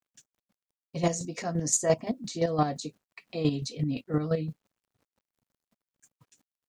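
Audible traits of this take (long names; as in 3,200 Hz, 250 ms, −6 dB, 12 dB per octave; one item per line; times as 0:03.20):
a quantiser's noise floor 12 bits, dither none
chopped level 5.8 Hz, depth 60%, duty 25%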